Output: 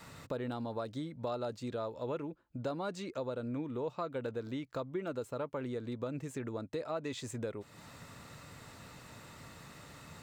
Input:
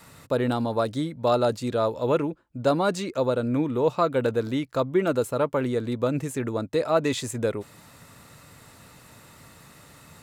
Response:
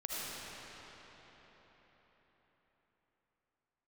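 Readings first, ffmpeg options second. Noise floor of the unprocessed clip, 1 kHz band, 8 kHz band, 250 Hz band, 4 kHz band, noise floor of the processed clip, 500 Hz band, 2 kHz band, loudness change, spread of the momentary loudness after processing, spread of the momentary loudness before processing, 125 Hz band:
−52 dBFS, −14.5 dB, −13.0 dB, −13.0 dB, −13.0 dB, −59 dBFS, −14.5 dB, −13.0 dB, −14.0 dB, 14 LU, 5 LU, −12.5 dB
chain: -af "equalizer=frequency=11000:width_type=o:width=0.51:gain=-12.5,acompressor=threshold=-40dB:ratio=2.5,volume=-1.5dB"

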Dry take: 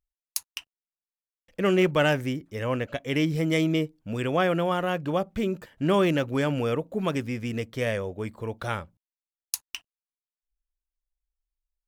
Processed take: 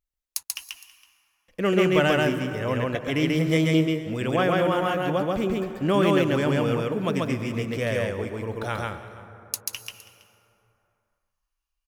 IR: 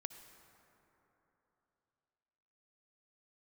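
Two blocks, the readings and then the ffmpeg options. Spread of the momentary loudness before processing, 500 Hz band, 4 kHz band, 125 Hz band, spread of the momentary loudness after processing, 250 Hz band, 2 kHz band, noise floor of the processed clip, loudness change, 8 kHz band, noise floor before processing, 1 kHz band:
12 LU, +2.5 dB, +2.5 dB, +3.0 dB, 14 LU, +2.5 dB, +2.5 dB, −82 dBFS, +2.5 dB, +2.5 dB, below −85 dBFS, +2.5 dB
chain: -filter_complex "[0:a]aecho=1:1:326:0.1,asplit=2[link_01][link_02];[1:a]atrim=start_sample=2205,adelay=137[link_03];[link_02][link_03]afir=irnorm=-1:irlink=0,volume=2.5dB[link_04];[link_01][link_04]amix=inputs=2:normalize=0"

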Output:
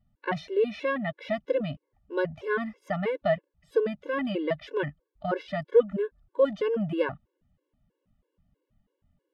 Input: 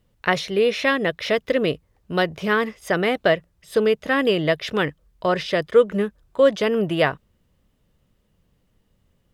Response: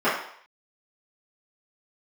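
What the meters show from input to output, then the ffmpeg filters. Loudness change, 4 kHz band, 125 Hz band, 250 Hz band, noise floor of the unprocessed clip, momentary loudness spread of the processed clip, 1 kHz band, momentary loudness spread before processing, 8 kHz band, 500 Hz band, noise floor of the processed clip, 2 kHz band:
−7.5 dB, −16.0 dB, −6.5 dB, −7.5 dB, −66 dBFS, 9 LU, −9.0 dB, 7 LU, can't be measured, −6.5 dB, −82 dBFS, −11.5 dB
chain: -af "lowpass=frequency=1200:poles=1,afftfilt=real='re*gt(sin(2*PI*3.1*pts/sr)*(1-2*mod(floor(b*sr/1024/290),2)),0)':imag='im*gt(sin(2*PI*3.1*pts/sr)*(1-2*mod(floor(b*sr/1024/290),2)),0)':win_size=1024:overlap=0.75,volume=-3.5dB"

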